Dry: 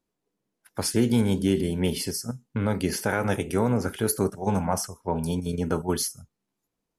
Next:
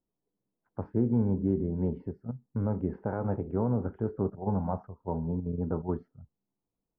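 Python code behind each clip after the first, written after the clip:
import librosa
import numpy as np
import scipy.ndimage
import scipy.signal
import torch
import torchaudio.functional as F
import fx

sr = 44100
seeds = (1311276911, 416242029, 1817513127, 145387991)

y = scipy.signal.sosfilt(scipy.signal.butter(4, 1100.0, 'lowpass', fs=sr, output='sos'), x)
y = fx.low_shelf(y, sr, hz=190.0, db=6.0)
y = F.gain(torch.from_numpy(y), -7.0).numpy()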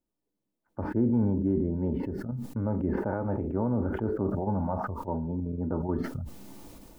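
y = x + 0.34 * np.pad(x, (int(3.4 * sr / 1000.0), 0))[:len(x)]
y = fx.sustainer(y, sr, db_per_s=24.0)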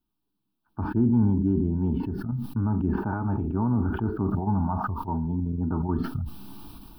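y = fx.fixed_phaser(x, sr, hz=2000.0, stages=6)
y = F.gain(torch.from_numpy(y), 6.0).numpy()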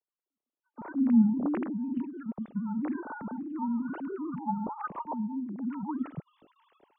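y = fx.sine_speech(x, sr)
y = F.gain(torch.from_numpy(y), -5.5).numpy()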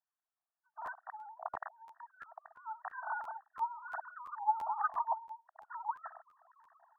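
y = fx.brickwall_bandpass(x, sr, low_hz=630.0, high_hz=1900.0)
y = fx.buffer_crackle(y, sr, first_s=0.85, period_s=0.34, block=512, kind='repeat')
y = F.gain(torch.from_numpy(y), 3.0).numpy()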